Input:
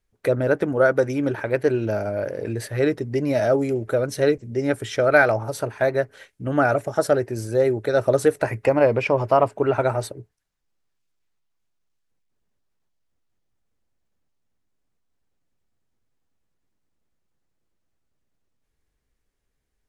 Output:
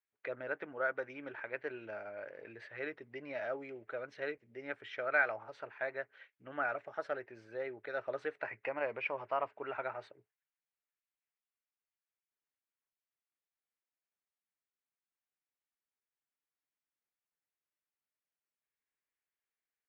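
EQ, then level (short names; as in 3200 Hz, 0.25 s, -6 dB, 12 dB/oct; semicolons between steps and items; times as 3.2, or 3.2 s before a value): LPF 2400 Hz 24 dB/oct; differentiator; +2.0 dB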